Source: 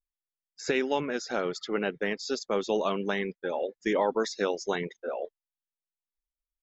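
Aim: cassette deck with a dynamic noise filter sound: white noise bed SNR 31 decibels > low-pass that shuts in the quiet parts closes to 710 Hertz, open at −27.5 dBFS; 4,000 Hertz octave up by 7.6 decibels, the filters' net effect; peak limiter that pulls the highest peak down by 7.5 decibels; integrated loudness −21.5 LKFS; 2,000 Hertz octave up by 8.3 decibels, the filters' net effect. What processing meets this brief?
parametric band 2,000 Hz +8.5 dB
parametric band 4,000 Hz +7 dB
brickwall limiter −15.5 dBFS
white noise bed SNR 31 dB
low-pass that shuts in the quiet parts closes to 710 Hz, open at −27.5 dBFS
level +8 dB

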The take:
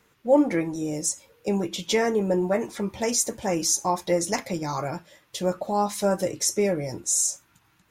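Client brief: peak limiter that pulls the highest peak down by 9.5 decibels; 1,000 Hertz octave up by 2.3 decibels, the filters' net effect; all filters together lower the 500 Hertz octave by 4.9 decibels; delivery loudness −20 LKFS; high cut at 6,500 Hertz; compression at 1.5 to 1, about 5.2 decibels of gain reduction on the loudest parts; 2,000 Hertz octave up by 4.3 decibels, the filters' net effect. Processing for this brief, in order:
low-pass filter 6,500 Hz
parametric band 500 Hz −7.5 dB
parametric band 1,000 Hz +5 dB
parametric band 2,000 Hz +4 dB
downward compressor 1.5 to 1, threshold −31 dBFS
level +14 dB
brickwall limiter −10 dBFS

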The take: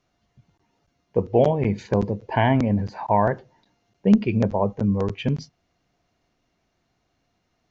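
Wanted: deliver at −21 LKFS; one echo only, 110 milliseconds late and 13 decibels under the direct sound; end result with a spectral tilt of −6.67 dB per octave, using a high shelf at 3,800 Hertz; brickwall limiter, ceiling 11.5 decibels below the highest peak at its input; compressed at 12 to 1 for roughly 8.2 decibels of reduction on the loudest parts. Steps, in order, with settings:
high-shelf EQ 3,800 Hz −8.5 dB
downward compressor 12 to 1, threshold −19 dBFS
brickwall limiter −20 dBFS
single-tap delay 110 ms −13 dB
level +10 dB

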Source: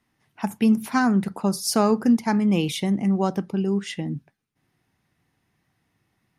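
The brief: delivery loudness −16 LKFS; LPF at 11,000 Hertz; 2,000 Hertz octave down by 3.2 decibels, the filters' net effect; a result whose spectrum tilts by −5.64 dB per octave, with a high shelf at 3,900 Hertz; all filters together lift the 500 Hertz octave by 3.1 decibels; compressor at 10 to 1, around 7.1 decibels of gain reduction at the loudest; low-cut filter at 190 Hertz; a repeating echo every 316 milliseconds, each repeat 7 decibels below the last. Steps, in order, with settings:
high-pass filter 190 Hz
low-pass filter 11,000 Hz
parametric band 500 Hz +4.5 dB
parametric band 2,000 Hz −4 dB
high-shelf EQ 3,900 Hz −4.5 dB
downward compressor 10 to 1, threshold −21 dBFS
repeating echo 316 ms, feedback 45%, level −7 dB
level +11 dB

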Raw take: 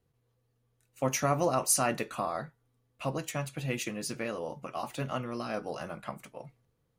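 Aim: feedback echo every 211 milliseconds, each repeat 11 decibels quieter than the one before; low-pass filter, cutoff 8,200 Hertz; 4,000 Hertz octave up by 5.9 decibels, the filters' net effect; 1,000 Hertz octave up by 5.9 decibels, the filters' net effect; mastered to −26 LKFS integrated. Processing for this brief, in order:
low-pass filter 8,200 Hz
parametric band 1,000 Hz +7.5 dB
parametric band 4,000 Hz +8 dB
repeating echo 211 ms, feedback 28%, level −11 dB
level +3.5 dB

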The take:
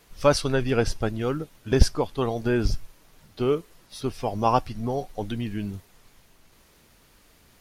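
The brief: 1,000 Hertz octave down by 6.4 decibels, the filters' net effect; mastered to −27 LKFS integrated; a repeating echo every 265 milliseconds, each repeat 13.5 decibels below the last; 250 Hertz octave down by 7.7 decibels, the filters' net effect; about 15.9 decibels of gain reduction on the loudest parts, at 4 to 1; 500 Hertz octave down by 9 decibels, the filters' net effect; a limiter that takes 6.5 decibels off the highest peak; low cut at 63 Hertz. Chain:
high-pass filter 63 Hz
parametric band 250 Hz −7 dB
parametric band 500 Hz −8 dB
parametric band 1,000 Hz −5 dB
downward compressor 4 to 1, threshold −34 dBFS
brickwall limiter −28.5 dBFS
repeating echo 265 ms, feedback 21%, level −13.5 dB
level +13.5 dB

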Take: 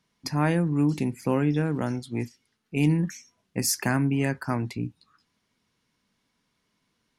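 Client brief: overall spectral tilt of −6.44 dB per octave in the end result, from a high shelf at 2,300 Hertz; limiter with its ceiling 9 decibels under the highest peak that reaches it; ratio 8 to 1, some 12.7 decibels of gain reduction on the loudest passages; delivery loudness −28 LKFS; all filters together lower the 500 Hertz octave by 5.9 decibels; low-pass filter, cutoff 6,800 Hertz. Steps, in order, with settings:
low-pass filter 6,800 Hz
parametric band 500 Hz −7.5 dB
high-shelf EQ 2,300 Hz −5.5 dB
downward compressor 8 to 1, threshold −33 dBFS
level +12 dB
brickwall limiter −17.5 dBFS

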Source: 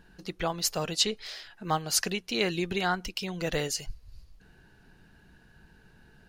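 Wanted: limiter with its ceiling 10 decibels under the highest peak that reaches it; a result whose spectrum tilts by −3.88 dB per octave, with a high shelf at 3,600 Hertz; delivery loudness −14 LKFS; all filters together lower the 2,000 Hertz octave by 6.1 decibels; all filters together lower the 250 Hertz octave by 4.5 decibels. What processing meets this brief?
parametric band 250 Hz −7.5 dB
parametric band 2,000 Hz −5.5 dB
high-shelf EQ 3,600 Hz −9 dB
level +24.5 dB
brickwall limiter −2.5 dBFS

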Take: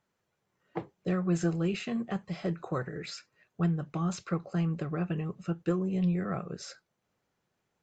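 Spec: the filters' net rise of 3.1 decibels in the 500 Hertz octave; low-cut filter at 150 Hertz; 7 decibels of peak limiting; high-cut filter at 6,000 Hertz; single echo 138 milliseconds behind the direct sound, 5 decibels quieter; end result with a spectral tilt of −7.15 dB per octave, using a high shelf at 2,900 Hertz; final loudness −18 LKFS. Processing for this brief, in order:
high-pass filter 150 Hz
low-pass filter 6,000 Hz
parametric band 500 Hz +4.5 dB
high-shelf EQ 2,900 Hz −7.5 dB
brickwall limiter −23.5 dBFS
single-tap delay 138 ms −5 dB
level +15.5 dB

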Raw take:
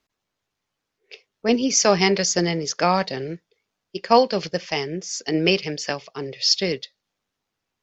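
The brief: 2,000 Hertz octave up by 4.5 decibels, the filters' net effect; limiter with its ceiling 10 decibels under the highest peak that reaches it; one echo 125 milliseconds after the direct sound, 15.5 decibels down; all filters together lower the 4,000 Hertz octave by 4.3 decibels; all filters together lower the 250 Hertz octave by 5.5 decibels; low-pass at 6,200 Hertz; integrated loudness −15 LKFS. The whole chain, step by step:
low-pass filter 6,200 Hz
parametric band 250 Hz −8 dB
parametric band 2,000 Hz +7.5 dB
parametric band 4,000 Hz −7 dB
brickwall limiter −13 dBFS
single-tap delay 125 ms −15.5 dB
level +11.5 dB

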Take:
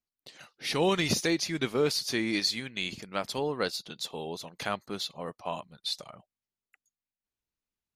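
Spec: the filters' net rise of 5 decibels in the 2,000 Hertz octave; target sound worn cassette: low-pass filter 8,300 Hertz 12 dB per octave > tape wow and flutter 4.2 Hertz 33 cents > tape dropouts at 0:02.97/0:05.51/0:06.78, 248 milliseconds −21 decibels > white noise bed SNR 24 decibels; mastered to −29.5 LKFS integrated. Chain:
low-pass filter 8,300 Hz 12 dB per octave
parametric band 2,000 Hz +6 dB
tape wow and flutter 4.2 Hz 33 cents
tape dropouts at 0:02.97/0:05.51/0:06.78, 248 ms −21 dB
white noise bed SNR 24 dB

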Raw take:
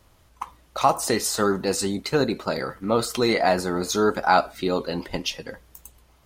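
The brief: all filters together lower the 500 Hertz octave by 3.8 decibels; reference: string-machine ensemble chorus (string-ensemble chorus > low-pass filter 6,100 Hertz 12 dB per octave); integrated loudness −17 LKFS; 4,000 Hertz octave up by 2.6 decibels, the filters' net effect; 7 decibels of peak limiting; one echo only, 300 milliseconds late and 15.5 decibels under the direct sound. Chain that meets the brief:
parametric band 500 Hz −5 dB
parametric band 4,000 Hz +4 dB
brickwall limiter −13 dBFS
single-tap delay 300 ms −15.5 dB
string-ensemble chorus
low-pass filter 6,100 Hz 12 dB per octave
level +12.5 dB

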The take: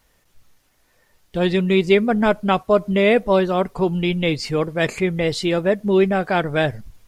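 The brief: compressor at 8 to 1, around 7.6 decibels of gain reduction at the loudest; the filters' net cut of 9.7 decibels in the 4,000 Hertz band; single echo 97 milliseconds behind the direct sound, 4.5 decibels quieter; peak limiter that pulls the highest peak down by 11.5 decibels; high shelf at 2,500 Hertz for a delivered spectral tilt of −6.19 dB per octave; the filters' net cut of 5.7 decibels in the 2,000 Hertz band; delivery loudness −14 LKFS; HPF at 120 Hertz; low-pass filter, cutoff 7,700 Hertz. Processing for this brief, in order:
high-pass filter 120 Hz
low-pass filter 7,700 Hz
parametric band 2,000 Hz −3 dB
high-shelf EQ 2,500 Hz −5.5 dB
parametric band 4,000 Hz −6.5 dB
downward compressor 8 to 1, threshold −19 dBFS
brickwall limiter −23 dBFS
single-tap delay 97 ms −4.5 dB
level +15.5 dB

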